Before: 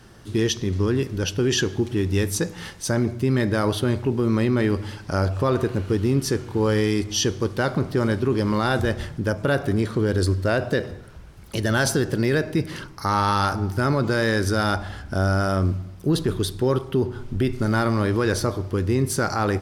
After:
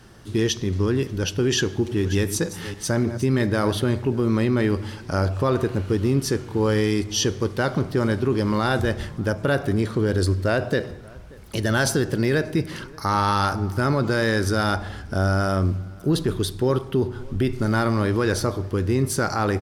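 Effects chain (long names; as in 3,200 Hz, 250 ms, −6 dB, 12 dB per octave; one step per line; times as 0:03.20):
0:01.56–0:03.82: delay that plays each chunk backwards 295 ms, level −12 dB
slap from a distant wall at 100 metres, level −24 dB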